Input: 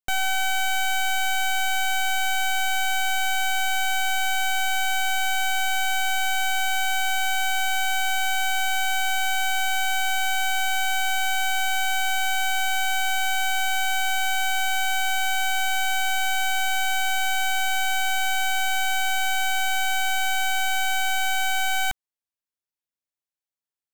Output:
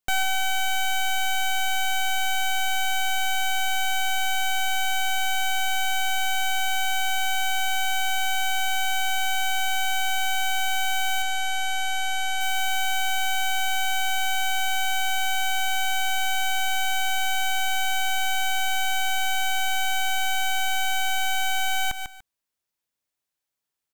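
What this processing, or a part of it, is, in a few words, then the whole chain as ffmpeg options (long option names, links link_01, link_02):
stacked limiters: -filter_complex "[0:a]asettb=1/sr,asplit=3[link_01][link_02][link_03];[link_01]atrim=end=11.224[link_04];[link_02]atrim=start=11.22:end=12.41,asetpts=PTS-STARTPTS,afade=type=in:duration=0.004:curve=qsin,afade=type=out:start_time=1.186:duration=0.004:curve=qsin,lowpass=11000[link_05];[link_03]atrim=start=12.406[link_06];[link_04][link_05]acrossfade=duration=0.004:curve1=hsin:curve2=qsin[link_07];[link_07][link_06]acrossfade=duration=0.004:curve1=qsin:curve2=hsin,aecho=1:1:146|292:0.2|0.0359,alimiter=limit=-23.5dB:level=0:latency=1:release=278,alimiter=level_in=5dB:limit=-24dB:level=0:latency=1:release=109,volume=-5dB,volume=7.5dB"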